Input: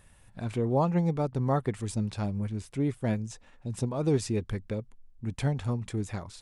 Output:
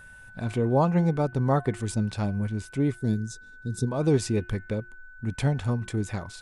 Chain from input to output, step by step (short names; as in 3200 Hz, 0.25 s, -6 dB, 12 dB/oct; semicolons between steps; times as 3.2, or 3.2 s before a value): spectral gain 2.97–3.87, 490–3400 Hz -17 dB; de-hum 354.4 Hz, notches 8; whine 1500 Hz -50 dBFS; gain +3.5 dB